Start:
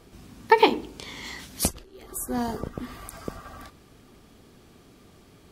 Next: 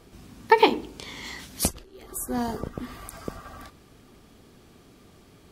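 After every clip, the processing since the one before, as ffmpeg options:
-af anull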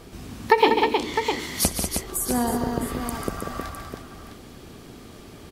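-af "aecho=1:1:63|142|192|314|657:0.119|0.355|0.376|0.398|0.266,acompressor=threshold=0.0178:ratio=1.5,volume=2.51"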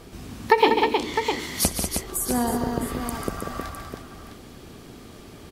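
-ar 48000 -c:a libmp3lame -b:a 224k

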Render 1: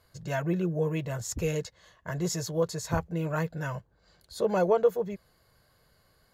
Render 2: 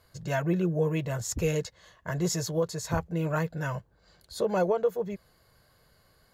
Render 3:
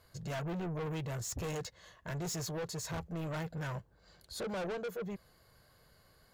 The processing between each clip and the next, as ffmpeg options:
-af "alimiter=limit=0.119:level=0:latency=1:release=350,volume=1.26"
-af "asoftclip=type=tanh:threshold=0.02,volume=0.841"

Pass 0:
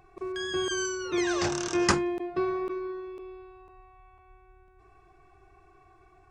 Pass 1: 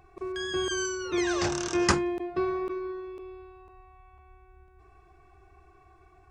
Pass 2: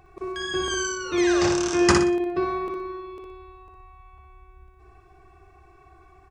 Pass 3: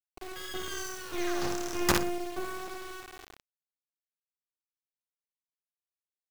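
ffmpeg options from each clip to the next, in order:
-af "equalizer=f=67:w=3.6:g=9.5"
-af "aecho=1:1:60|120|180|240:0.596|0.208|0.073|0.0255,volume=1.41"
-af "acrusher=bits=3:dc=4:mix=0:aa=0.000001,volume=0.447"

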